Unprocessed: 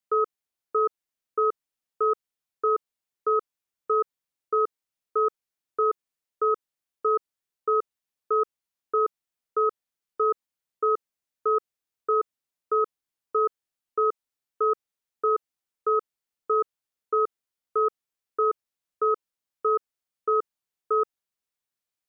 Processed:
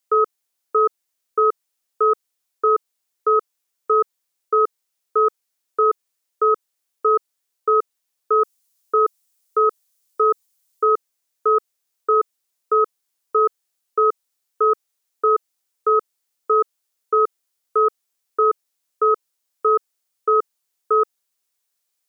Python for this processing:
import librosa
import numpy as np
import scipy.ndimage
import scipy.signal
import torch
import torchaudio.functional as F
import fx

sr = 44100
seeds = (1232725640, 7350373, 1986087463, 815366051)

y = fx.bass_treble(x, sr, bass_db=-10, treble_db=fx.steps((0.0, 6.0), (8.38, 15.0), (10.84, 7.0)))
y = y * librosa.db_to_amplitude(7.0)